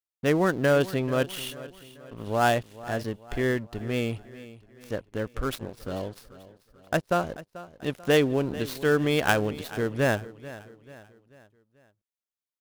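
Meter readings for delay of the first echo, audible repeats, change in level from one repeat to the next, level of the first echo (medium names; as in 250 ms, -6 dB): 438 ms, 3, -7.0 dB, -17.0 dB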